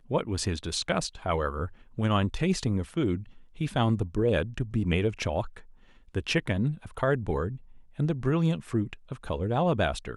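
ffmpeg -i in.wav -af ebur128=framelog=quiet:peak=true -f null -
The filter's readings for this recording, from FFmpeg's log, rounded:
Integrated loudness:
  I:         -28.9 LUFS
  Threshold: -39.3 LUFS
Loudness range:
  LRA:         1.7 LU
  Threshold: -49.3 LUFS
  LRA low:   -30.2 LUFS
  LRA high:  -28.5 LUFS
True peak:
  Peak:      -12.3 dBFS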